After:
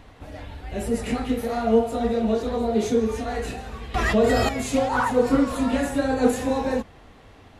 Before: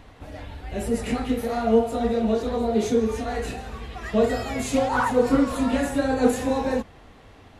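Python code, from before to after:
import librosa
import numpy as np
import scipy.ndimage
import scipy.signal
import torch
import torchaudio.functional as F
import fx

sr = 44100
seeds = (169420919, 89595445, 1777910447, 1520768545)

y = fx.env_flatten(x, sr, amount_pct=70, at=(3.94, 4.49))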